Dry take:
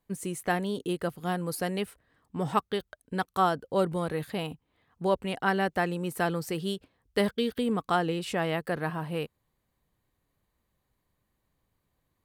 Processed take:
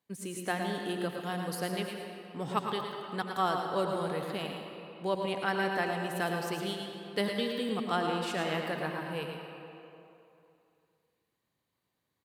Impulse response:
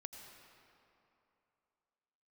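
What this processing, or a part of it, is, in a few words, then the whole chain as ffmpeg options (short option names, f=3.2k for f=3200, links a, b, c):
PA in a hall: -filter_complex "[0:a]highpass=140,equalizer=f=3.9k:t=o:w=1.8:g=5,aecho=1:1:111:0.422[a];[1:a]atrim=start_sample=2205[b];[a][b]afir=irnorm=-1:irlink=0"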